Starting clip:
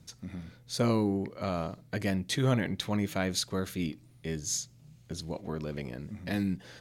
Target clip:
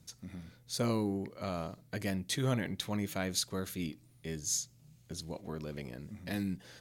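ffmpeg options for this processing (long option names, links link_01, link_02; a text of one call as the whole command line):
ffmpeg -i in.wav -af "highshelf=frequency=6500:gain=8.5,volume=-5dB" out.wav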